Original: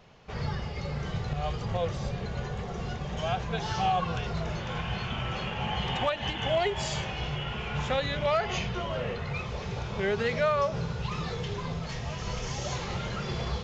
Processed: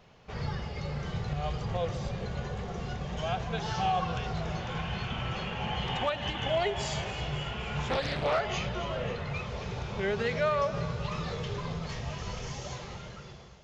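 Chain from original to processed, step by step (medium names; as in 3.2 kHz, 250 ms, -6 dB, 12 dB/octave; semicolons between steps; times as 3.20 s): fade out at the end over 1.61 s; on a send: echo whose repeats swap between lows and highs 134 ms, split 930 Hz, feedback 81%, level -12.5 dB; 7.90–8.39 s: on the sum: loudspeaker Doppler distortion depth 0.76 ms; trim -2 dB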